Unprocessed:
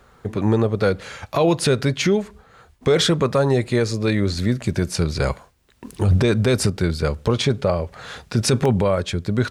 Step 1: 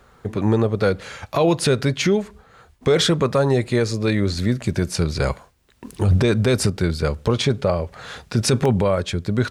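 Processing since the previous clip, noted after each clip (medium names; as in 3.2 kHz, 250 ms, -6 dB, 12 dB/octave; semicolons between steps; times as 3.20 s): no audible change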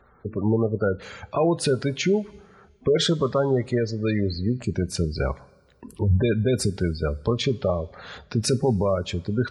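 Chebyshev shaper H 3 -27 dB, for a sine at -8.5 dBFS; spectral gate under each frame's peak -20 dB strong; two-slope reverb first 0.22 s, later 1.8 s, from -18 dB, DRR 14.5 dB; trim -3 dB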